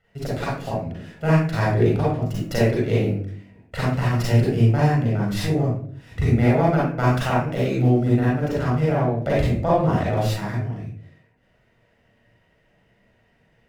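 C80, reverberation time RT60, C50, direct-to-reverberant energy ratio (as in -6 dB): 5.0 dB, 0.55 s, -1.5 dB, -6.5 dB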